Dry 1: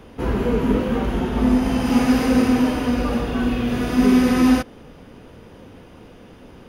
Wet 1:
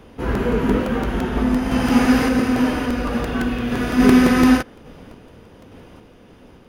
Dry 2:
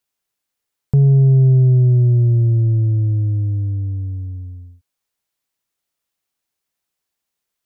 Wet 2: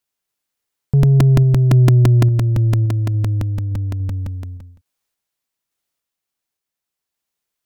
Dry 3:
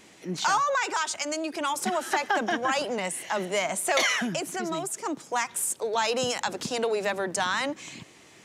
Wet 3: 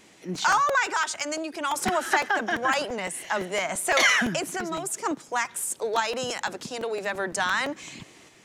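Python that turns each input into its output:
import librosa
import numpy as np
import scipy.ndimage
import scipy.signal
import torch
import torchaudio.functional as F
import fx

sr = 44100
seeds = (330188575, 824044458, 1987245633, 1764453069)

y = fx.tremolo_random(x, sr, seeds[0], hz=3.5, depth_pct=55)
y = fx.dynamic_eq(y, sr, hz=1600.0, q=1.6, threshold_db=-43.0, ratio=4.0, max_db=5)
y = fx.buffer_crackle(y, sr, first_s=0.35, period_s=0.17, block=128, kind='repeat')
y = y * 10.0 ** (2.5 / 20.0)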